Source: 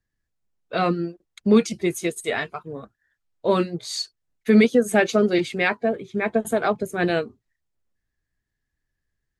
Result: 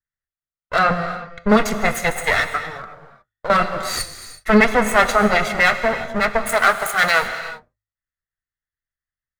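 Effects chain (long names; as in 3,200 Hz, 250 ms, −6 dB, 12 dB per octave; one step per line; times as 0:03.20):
lower of the sound and its delayed copy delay 1.5 ms
flat-topped bell 1,500 Hz +9 dB 1.2 octaves
noise gate with hold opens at −46 dBFS
in parallel at +2 dB: brickwall limiter −12.5 dBFS, peak gain reduction 8 dB
0:00.83–0:01.48: on the sum: low-pass filter 6,100 Hz → 2,700 Hz 12 dB per octave
0:06.49–0:07.22: spectral tilt +3 dB per octave
reverb whose tail is shaped and stops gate 390 ms flat, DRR 9 dB
0:02.65–0:03.50: downward compressor 6 to 1, threshold −26 dBFS, peak gain reduction 13.5 dB
hum removal 52.32 Hz, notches 2
level −1.5 dB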